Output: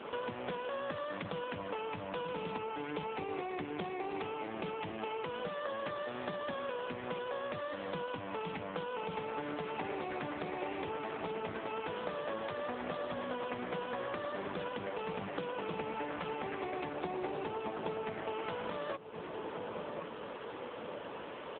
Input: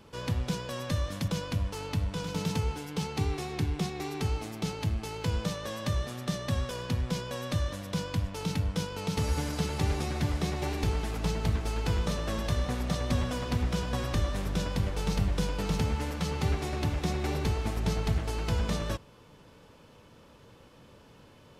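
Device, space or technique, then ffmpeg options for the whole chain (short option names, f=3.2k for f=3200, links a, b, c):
voicemail: -filter_complex "[0:a]asettb=1/sr,asplit=3[a][b][c];[a]atrim=end=16.934[d];[b]atrim=start=16.93:end=18.06,asetpts=PTS-STARTPTS,afade=t=in:d=0.004:c=qsin,afade=t=out:st=1.126:d=0.004:c=qsin,adynamicequalizer=threshold=0.00251:dfrequency=2100:dqfactor=1.6:tfrequency=2100:tqfactor=1.6:attack=5:release=100:ratio=0.375:range=2:mode=cutabove:tftype=bell[e];[c]atrim=start=18.056[f];[d][e]acrossfade=d=0.004:c1=hsin:c2=qsin[g];[g][f]acrossfade=d=0.004:c1=qsin:c2=hsin,highpass=380,lowpass=2.8k,asplit=2[h][i];[i]adelay=1072,lowpass=f=910:p=1,volume=-18dB,asplit=2[j][k];[k]adelay=1072,lowpass=f=910:p=1,volume=0.38,asplit=2[l][m];[m]adelay=1072,lowpass=f=910:p=1,volume=0.38[n];[h][j][l][n]amix=inputs=4:normalize=0,acompressor=threshold=-51dB:ratio=8,volume=16dB" -ar 8000 -c:a libopencore_amrnb -b:a 7950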